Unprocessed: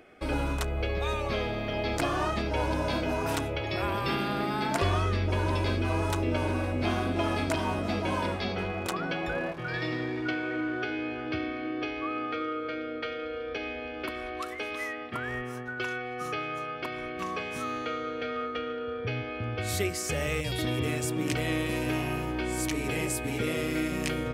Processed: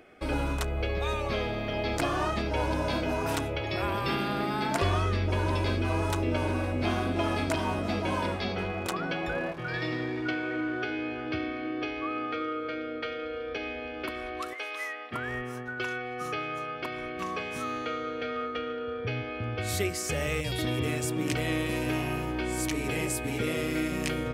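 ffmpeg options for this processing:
-filter_complex "[0:a]asettb=1/sr,asplit=3[a][b][c];[a]atrim=end=14.534[d];[b]atrim=start=14.53:end=15.11,asetpts=PTS-STARTPTS,afade=t=in:d=0.004:c=qsin,afade=t=out:st=0.576:d=0.004:c=qsin,highpass=600[e];[c]atrim=start=15.106[f];[d][e]acrossfade=d=0.004:c1=hsin:c2=qsin[g];[g][f]acrossfade=d=0.004:c1=qsin:c2=hsin"

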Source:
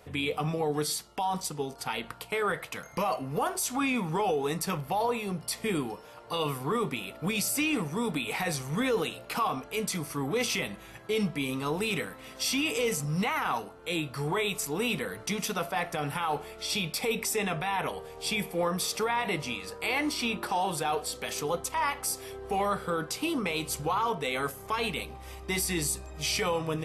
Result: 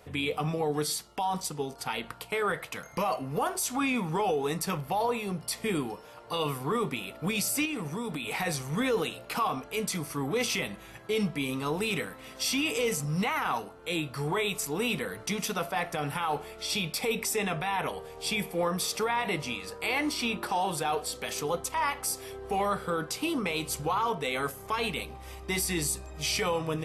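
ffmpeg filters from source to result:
-filter_complex "[0:a]asettb=1/sr,asplit=3[a][b][c];[a]atrim=end=7.654[d];[b]atrim=start=7.65:end=8.31,asetpts=PTS-STARTPTS,afade=t=in:d=0.004:c=qsin,afade=t=out:st=0.656:d=0.004:c=qsin,acompressor=threshold=-30dB:ratio=6:attack=3.2:release=140:knee=1:detection=peak[e];[c]atrim=start=8.306[f];[d][e]acrossfade=d=0.004:c1=hsin:c2=qsin[g];[g][f]acrossfade=d=0.004:c1=qsin:c2=hsin"

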